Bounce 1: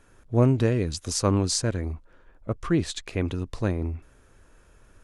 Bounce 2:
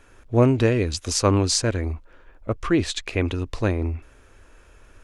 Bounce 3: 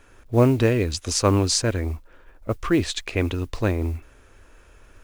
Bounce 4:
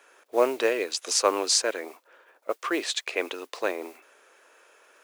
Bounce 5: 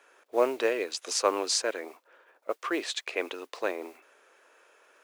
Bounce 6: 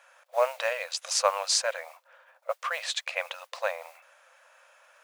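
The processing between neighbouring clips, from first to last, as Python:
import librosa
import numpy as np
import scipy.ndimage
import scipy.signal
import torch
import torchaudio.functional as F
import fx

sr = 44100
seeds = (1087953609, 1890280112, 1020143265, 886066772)

y1 = fx.graphic_eq_15(x, sr, hz=(160, 2500, 10000), db=(-9, 4, -4))
y1 = y1 * 10.0 ** (5.0 / 20.0)
y2 = fx.mod_noise(y1, sr, seeds[0], snr_db=31)
y3 = scipy.signal.sosfilt(scipy.signal.butter(4, 430.0, 'highpass', fs=sr, output='sos'), y2)
y4 = fx.high_shelf(y3, sr, hz=4700.0, db=-4.5)
y4 = y4 * 10.0 ** (-2.5 / 20.0)
y5 = fx.brickwall_highpass(y4, sr, low_hz=500.0)
y5 = y5 * 10.0 ** (2.5 / 20.0)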